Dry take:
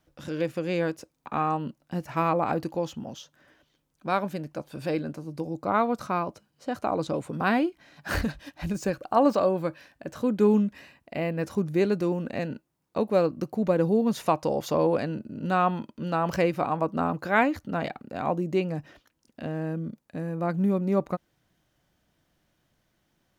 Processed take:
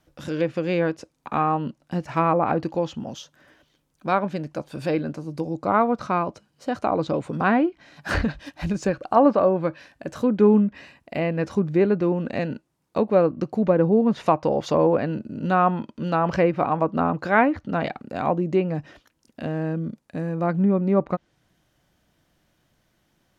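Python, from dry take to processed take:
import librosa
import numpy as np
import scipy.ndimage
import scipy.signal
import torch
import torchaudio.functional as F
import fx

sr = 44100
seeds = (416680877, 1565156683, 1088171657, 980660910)

y = fx.env_lowpass_down(x, sr, base_hz=2000.0, full_db=-20.5)
y = y * 10.0 ** (4.5 / 20.0)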